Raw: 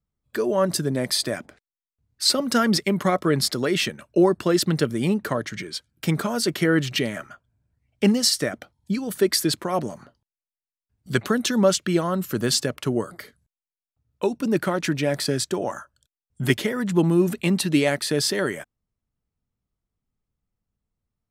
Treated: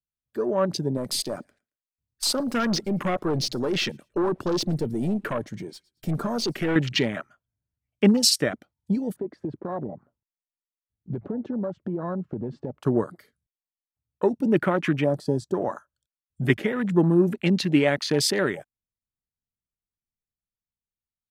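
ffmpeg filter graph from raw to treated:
-filter_complex "[0:a]asettb=1/sr,asplit=3[a][b][c];[a]atrim=end=0.974[d];[b]atrim=start=0.97:end=6.76,asetpts=PTS-STARTPTS,afade=t=in:d=0.004:c=qsin,afade=t=out:st=5.786:d=0.004:c=qsin,highshelf=f=4.8k:g=7,aeval=exprs='(tanh(12.6*val(0)+0.15)-tanh(0.15))/12.6':c=same,aecho=1:1:112|224:0.0708|0.0205,atrim=end_sample=255339[e];[c]atrim=start=6.756[f];[d][e]acrossfade=d=0.004:c1=hsin:c2=qsin[g];[g][f]acrossfade=d=0.004:c1=qsin:c2=hsin,asettb=1/sr,asplit=3[h][i][j];[h]atrim=end=9.164[k];[i]atrim=start=9.16:end=12.82,asetpts=PTS-STARTPTS,afade=t=in:d=0.004:c=qsin,afade=t=out:st=3.656:d=0.004:c=qsin,lowpass=1.1k,acompressor=threshold=-26dB:ratio=12:attack=3.2:release=140:knee=1:detection=peak,asoftclip=type=hard:threshold=-23.5dB[l];[j]atrim=start=12.816[m];[k][l]acrossfade=d=0.004:c1=hsin:c2=qsin[n];[n][m]acrossfade=d=0.004:c1=qsin:c2=hsin,asettb=1/sr,asplit=3[o][p][q];[o]atrim=end=15.064[r];[p]atrim=start=15.06:end=15.54,asetpts=PTS-STARTPTS,afade=t=in:d=0.004:c=qsin,afade=t=out:st=0.476:d=0.004:c=qsin,acrossover=split=8600[s][t];[t]acompressor=threshold=-41dB:ratio=4:attack=1:release=60[u];[s][u]amix=inputs=2:normalize=0,equalizer=f=2.2k:t=o:w=0.82:g=-15[v];[q]atrim=start=15.536[w];[r][v]acrossfade=d=0.004:c1=hsin:c2=qsin[x];[x][w]acrossfade=d=0.004:c1=qsin:c2=hsin,afwtdn=0.0251,dynaudnorm=f=150:g=17:m=4dB,volume=-2.5dB"

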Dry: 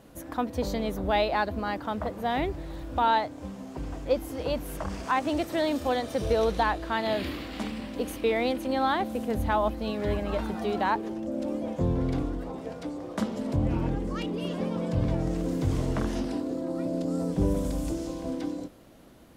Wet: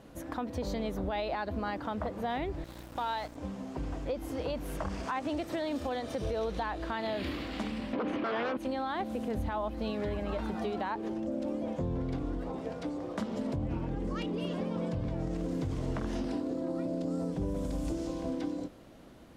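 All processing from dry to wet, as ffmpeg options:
-filter_complex "[0:a]asettb=1/sr,asplit=3[a][b][c];[a]atrim=end=2.644[d];[b]atrim=start=2.64:end=3.36,asetpts=PTS-STARTPTS,afade=t=in:d=0.004:c=qsin,afade=t=out:st=0.716:d=0.004:c=qsin,aemphasis=mode=production:type=bsi,aeval=exprs='val(0)+0.00891*(sin(2*PI*60*n/s)+sin(2*PI*2*60*n/s)/2+sin(2*PI*3*60*n/s)/3+sin(2*PI*4*60*n/s)/4+sin(2*PI*5*60*n/s)/5)':c=same,aeval=exprs='sgn(val(0))*max(abs(val(0))-0.00841,0)':c=same[e];[c]atrim=start=3.356[f];[d][e]acrossfade=d=0.004:c1=hsin:c2=qsin[g];[g][f]acrossfade=d=0.004:c1=qsin:c2=hsin,asettb=1/sr,asplit=3[h][i][j];[h]atrim=end=7.934[k];[i]atrim=start=7.93:end=8.57,asetpts=PTS-STARTPTS,afade=t=in:d=0.004:c=qsin,afade=t=out:st=0.636:d=0.004:c=qsin,aeval=exprs='0.188*sin(PI/2*3.98*val(0)/0.188)':c=same,highpass=180,lowpass=2.1k[l];[j]atrim=start=8.566[m];[k][l]acrossfade=d=0.004:c1=hsin:c2=qsin[n];[n][m]acrossfade=d=0.004:c1=qsin:c2=hsin,highshelf=f=10k:g=-11.5,alimiter=limit=-22dB:level=0:latency=1:release=114,acompressor=threshold=-32dB:ratio=2"

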